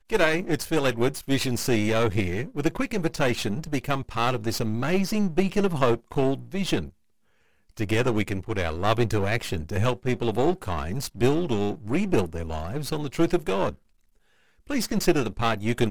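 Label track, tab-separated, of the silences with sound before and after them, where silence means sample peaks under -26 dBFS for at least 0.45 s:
6.840000	7.790000	silence
13.690000	14.700000	silence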